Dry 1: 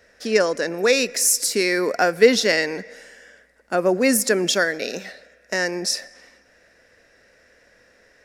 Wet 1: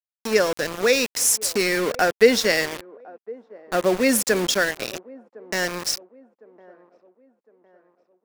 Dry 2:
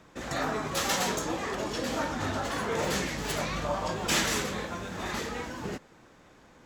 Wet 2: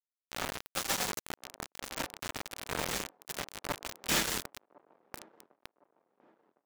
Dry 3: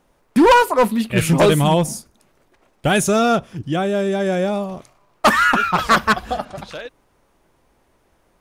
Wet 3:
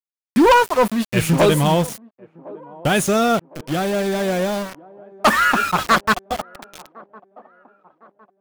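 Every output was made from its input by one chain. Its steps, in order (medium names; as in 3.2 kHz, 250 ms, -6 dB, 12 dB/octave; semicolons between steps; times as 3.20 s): small samples zeroed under -23.5 dBFS; on a send: feedback echo behind a band-pass 1058 ms, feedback 40%, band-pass 500 Hz, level -20.5 dB; on the sum: trim -1 dB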